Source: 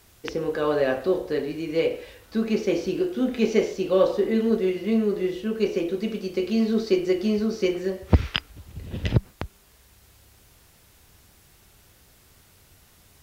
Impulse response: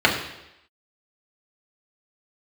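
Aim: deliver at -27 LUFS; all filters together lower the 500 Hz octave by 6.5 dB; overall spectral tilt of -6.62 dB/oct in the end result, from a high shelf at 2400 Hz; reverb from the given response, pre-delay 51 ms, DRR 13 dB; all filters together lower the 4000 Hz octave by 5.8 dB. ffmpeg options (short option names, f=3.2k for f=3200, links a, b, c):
-filter_complex "[0:a]equalizer=f=500:t=o:g=-8.5,highshelf=f=2.4k:g=-4,equalizer=f=4k:t=o:g=-4.5,asplit=2[a][b];[1:a]atrim=start_sample=2205,adelay=51[c];[b][c]afir=irnorm=-1:irlink=0,volume=-34.5dB[d];[a][d]amix=inputs=2:normalize=0,volume=1.5dB"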